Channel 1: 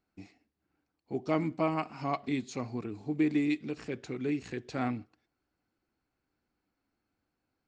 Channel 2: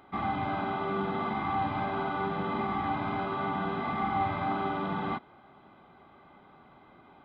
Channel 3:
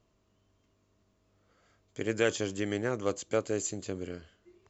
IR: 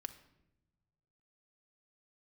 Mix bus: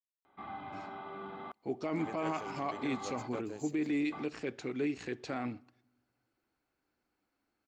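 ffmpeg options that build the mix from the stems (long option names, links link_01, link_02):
-filter_complex "[0:a]adelay=550,volume=0.5dB,asplit=2[link_01][link_02];[link_02]volume=-14dB[link_03];[1:a]adelay=250,volume=-12dB,asplit=3[link_04][link_05][link_06];[link_04]atrim=end=3.4,asetpts=PTS-STARTPTS,afade=type=out:start_time=3.396:duration=0.004:curve=hsin[link_07];[link_05]atrim=start=3.4:end=4.12,asetpts=PTS-STARTPTS,volume=0[link_08];[link_06]atrim=start=4.12,asetpts=PTS-STARTPTS,afade=type=in:duration=0.004:curve=hsin[link_09];[link_07][link_08][link_09]concat=n=3:v=0:a=1[link_10];[2:a]aeval=exprs='sgn(val(0))*max(abs(val(0))-0.0015,0)':channel_layout=same,volume=-13dB,asplit=2[link_11][link_12];[link_12]apad=whole_len=334869[link_13];[link_10][link_13]sidechaingate=range=-34dB:threshold=-58dB:ratio=16:detection=peak[link_14];[3:a]atrim=start_sample=2205[link_15];[link_03][link_15]afir=irnorm=-1:irlink=0[link_16];[link_01][link_14][link_11][link_16]amix=inputs=4:normalize=0,bass=frequency=250:gain=-7,treble=frequency=4000:gain=-2,alimiter=level_in=1.5dB:limit=-24dB:level=0:latency=1:release=21,volume=-1.5dB"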